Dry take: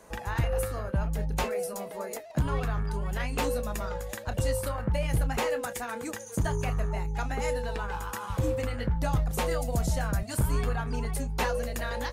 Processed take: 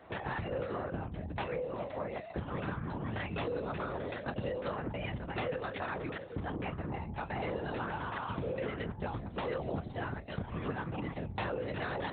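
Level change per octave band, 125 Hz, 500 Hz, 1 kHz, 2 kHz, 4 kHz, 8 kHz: −9.5 dB, −5.0 dB, −4.5 dB, −4.5 dB, −7.5 dB, below −40 dB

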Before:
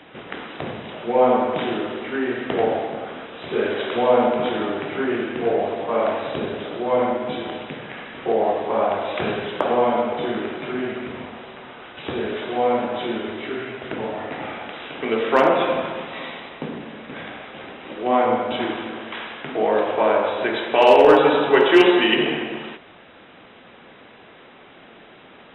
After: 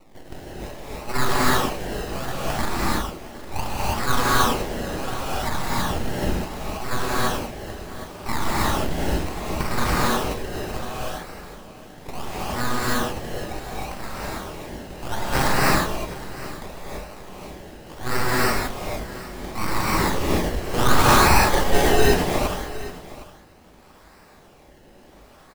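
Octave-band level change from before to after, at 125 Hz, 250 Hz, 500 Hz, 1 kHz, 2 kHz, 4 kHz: +10.5, −3.5, −8.5, −1.5, +0.5, 0.0 decibels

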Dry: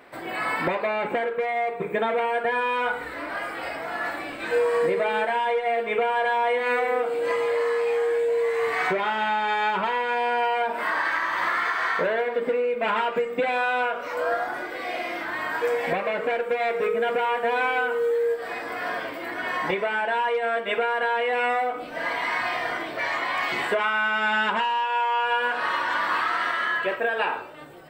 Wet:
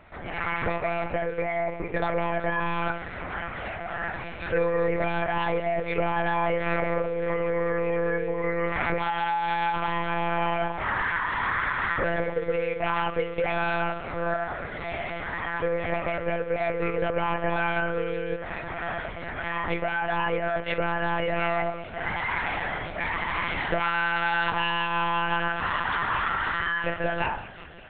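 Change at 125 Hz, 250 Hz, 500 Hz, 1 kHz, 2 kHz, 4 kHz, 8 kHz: +12.5 dB, +3.5 dB, −3.5 dB, −3.0 dB, −2.5 dB, −3.0 dB, can't be measured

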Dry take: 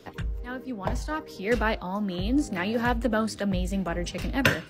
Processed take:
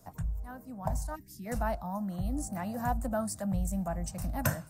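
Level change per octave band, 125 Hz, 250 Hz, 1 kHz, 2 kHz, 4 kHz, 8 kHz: −2.5, −7.5, −4.5, −14.0, −16.5, +0.5 decibels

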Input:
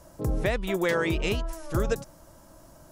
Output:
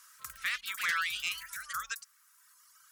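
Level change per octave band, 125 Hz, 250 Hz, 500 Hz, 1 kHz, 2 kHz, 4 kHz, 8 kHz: below −35 dB, below −35 dB, below −35 dB, −3.0 dB, 0.0 dB, +1.0 dB, +2.0 dB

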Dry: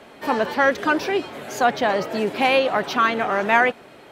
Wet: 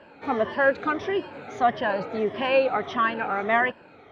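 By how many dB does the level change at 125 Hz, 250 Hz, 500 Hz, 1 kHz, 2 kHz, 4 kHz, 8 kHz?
−4.0 dB, −5.0 dB, −3.0 dB, −4.5 dB, −5.0 dB, −8.0 dB, below −15 dB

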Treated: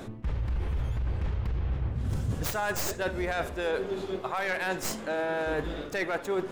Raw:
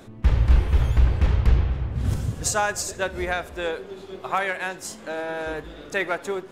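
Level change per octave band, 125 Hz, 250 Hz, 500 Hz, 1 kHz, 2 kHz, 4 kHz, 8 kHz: −9.0, −2.5, −1.5, −5.0, −4.0, −4.5, −8.5 decibels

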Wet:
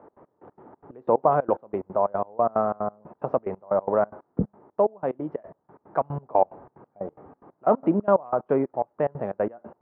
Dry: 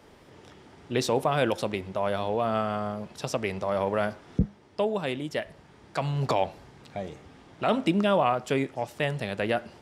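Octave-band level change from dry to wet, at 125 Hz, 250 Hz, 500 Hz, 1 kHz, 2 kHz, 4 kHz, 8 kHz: −4.0 dB, 0.0 dB, +3.5 dB, +3.5 dB, −10.0 dB, below −30 dB, below −35 dB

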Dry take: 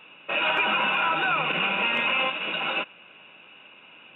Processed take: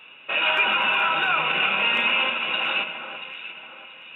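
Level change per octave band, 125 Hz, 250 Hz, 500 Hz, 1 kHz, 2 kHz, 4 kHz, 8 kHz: −3.5 dB, −2.5 dB, −0.5 dB, +1.0 dB, +3.5 dB, +4.5 dB, can't be measured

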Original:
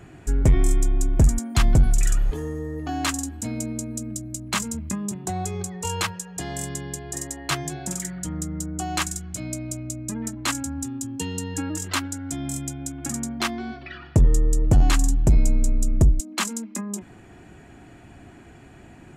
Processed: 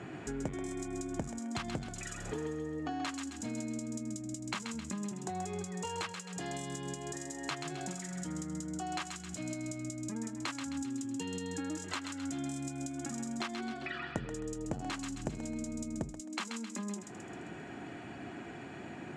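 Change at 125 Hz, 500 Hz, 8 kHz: −19.0, −8.0, −14.0 decibels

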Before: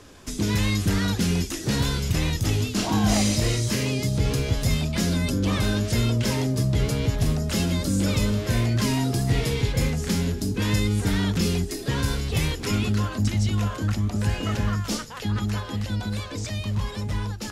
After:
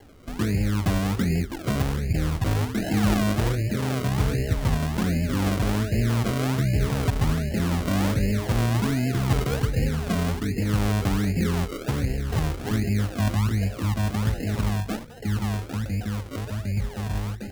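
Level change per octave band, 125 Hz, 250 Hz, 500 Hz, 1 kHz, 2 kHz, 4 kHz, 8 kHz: 0.0, −0.5, −0.5, +1.0, −1.5, −6.5, −7.0 decibels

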